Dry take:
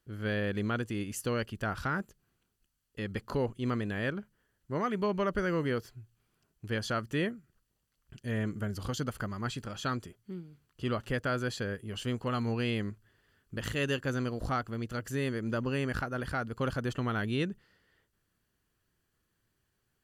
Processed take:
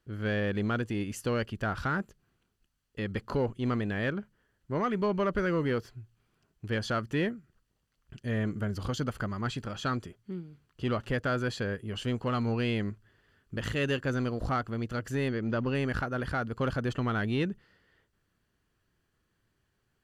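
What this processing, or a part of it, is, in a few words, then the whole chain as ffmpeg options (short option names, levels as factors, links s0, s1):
parallel distortion: -filter_complex "[0:a]asplit=2[s0][s1];[s1]asoftclip=type=hard:threshold=0.0266,volume=0.447[s2];[s0][s2]amix=inputs=2:normalize=0,asettb=1/sr,asplit=3[s3][s4][s5];[s3]atrim=end=15.284[s6];[s4]atrim=start=15.28:end=15.75,asetpts=PTS-STARTPTS,afade=t=in:d=0.004:c=qsin,afade=t=out:st=0.466:d=0.004:c=qsin,lowpass=f=5900:w=0.5412,lowpass=f=5900:w=1.3066[s7];[s5]atrim=start=15.746[s8];[s6][s7]acrossfade=d=0.004:c1=hsin:c2=qsin[s9];[s9][s8]acrossfade=d=0.004:c1=qsin:c2=hsin,highshelf=f=7400:g=-11.5"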